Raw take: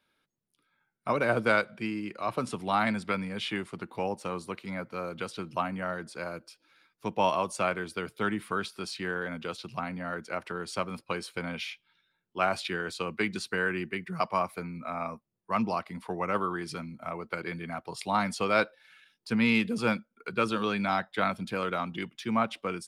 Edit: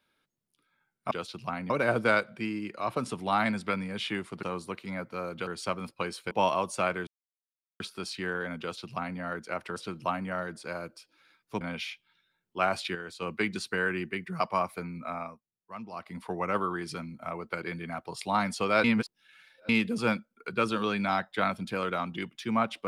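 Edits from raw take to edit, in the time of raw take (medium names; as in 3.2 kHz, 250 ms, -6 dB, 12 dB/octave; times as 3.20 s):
3.84–4.23 s: delete
5.27–7.12 s: swap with 10.57–11.41 s
7.88–8.61 s: mute
9.41–10.00 s: copy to 1.11 s
12.75–13.02 s: gain -6.5 dB
14.91–15.98 s: dip -13.5 dB, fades 0.27 s
18.64–19.49 s: reverse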